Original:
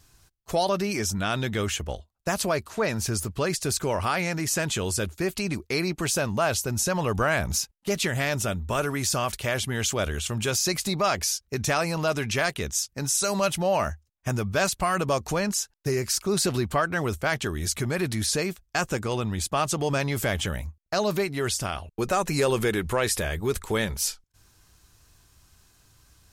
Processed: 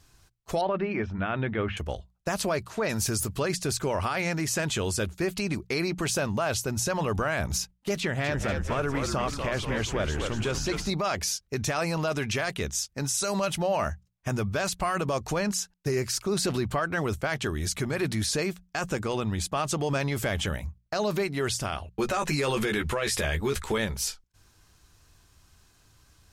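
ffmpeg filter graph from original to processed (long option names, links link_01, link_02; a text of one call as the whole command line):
ffmpeg -i in.wav -filter_complex "[0:a]asettb=1/sr,asplit=3[link_01][link_02][link_03];[link_01]atrim=end=0.614[link_04];[link_02]atrim=start=0.61:end=1.77,asetpts=PTS-STARTPTS,afade=type=in:duration=0.004:curve=qsin,afade=type=out:start_time=1.156:duration=0.004:curve=qsin,lowpass=frequency=2500:width=0.5412,lowpass=frequency=2500:width=1.3066,bandreject=frequency=50:width_type=h:width=6,bandreject=frequency=100:width_type=h:width=6,bandreject=frequency=150:width_type=h:width=6,bandreject=frequency=200:width_type=h:width=6,bandreject=frequency=250:width_type=h:width=6[link_05];[link_03]atrim=start=1.766[link_06];[link_04][link_05]acrossfade=duration=0.004:curve1=hsin:curve2=qsin[link_07];[link_07][link_06]acrossfade=duration=0.004:curve1=qsin:curve2=hsin,asettb=1/sr,asplit=3[link_08][link_09][link_10];[link_08]atrim=end=2.894[link_11];[link_09]atrim=start=2.89:end=3.4,asetpts=PTS-STARTPTS,afade=type=in:duration=0.004:curve=qsin,afade=type=out:start_time=0.506:duration=0.004:curve=qsin,highshelf=frequency=6200:gain=11.5,acompressor=mode=upward:threshold=-31dB:ratio=2.5:attack=3.2:release=140:knee=2.83:detection=peak[link_12];[link_10]atrim=start=3.396[link_13];[link_11][link_12]acrossfade=duration=0.004:curve1=hsin:curve2=qsin[link_14];[link_14][link_13]acrossfade=duration=0.004:curve1=qsin:curve2=hsin,asettb=1/sr,asplit=3[link_15][link_16][link_17];[link_15]atrim=end=8.004[link_18];[link_16]atrim=start=8:end=10.9,asetpts=PTS-STARTPTS,afade=type=in:duration=0.004:curve=qsin,afade=type=out:start_time=2.896:duration=0.004:curve=qsin,lowpass=frequency=2700:poles=1,asplit=8[link_19][link_20][link_21][link_22][link_23][link_24][link_25][link_26];[link_20]adelay=240,afreqshift=-75,volume=-6dB[link_27];[link_21]adelay=480,afreqshift=-150,volume=-11dB[link_28];[link_22]adelay=720,afreqshift=-225,volume=-16.1dB[link_29];[link_23]adelay=960,afreqshift=-300,volume=-21.1dB[link_30];[link_24]adelay=1200,afreqshift=-375,volume=-26.1dB[link_31];[link_25]adelay=1440,afreqshift=-450,volume=-31.2dB[link_32];[link_26]adelay=1680,afreqshift=-525,volume=-36.2dB[link_33];[link_19][link_27][link_28][link_29][link_30][link_31][link_32][link_33]amix=inputs=8:normalize=0,atrim=end_sample=127890[link_34];[link_17]atrim=start=10.896[link_35];[link_18][link_34]acrossfade=duration=0.004:curve1=hsin:curve2=qsin[link_36];[link_36][link_35]acrossfade=duration=0.004:curve1=qsin:curve2=hsin,asettb=1/sr,asplit=3[link_37][link_38][link_39];[link_37]atrim=end=21.914[link_40];[link_38]atrim=start=21.91:end=23.78,asetpts=PTS-STARTPTS,afade=type=in:duration=0.004:curve=qsin,afade=type=out:start_time=1.866:duration=0.004:curve=qsin,equalizer=frequency=2900:width_type=o:width=2.7:gain=5,asplit=2[link_41][link_42];[link_42]adelay=14,volume=-6dB[link_43];[link_41][link_43]amix=inputs=2:normalize=0,atrim=end_sample=82467[link_44];[link_39]atrim=start=23.776[link_45];[link_40][link_44]acrossfade=duration=0.004:curve1=hsin:curve2=qsin[link_46];[link_46][link_45]acrossfade=duration=0.004:curve1=qsin:curve2=hsin,highshelf=frequency=8300:gain=-7,bandreject=frequency=60:width_type=h:width=6,bandreject=frequency=120:width_type=h:width=6,bandreject=frequency=180:width_type=h:width=6,alimiter=limit=-18.5dB:level=0:latency=1:release=17" out.wav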